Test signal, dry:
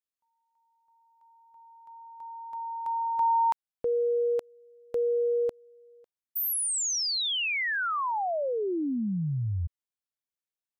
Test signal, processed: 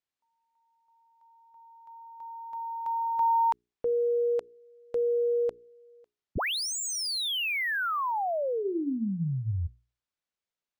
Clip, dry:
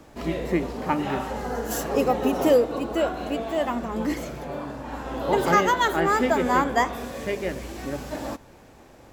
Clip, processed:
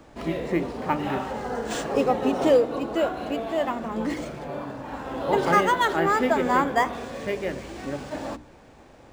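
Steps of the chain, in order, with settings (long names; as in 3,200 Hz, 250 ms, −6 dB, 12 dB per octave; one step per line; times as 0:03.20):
mains-hum notches 60/120/180/240/300/360/420 Hz
linearly interpolated sample-rate reduction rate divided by 3×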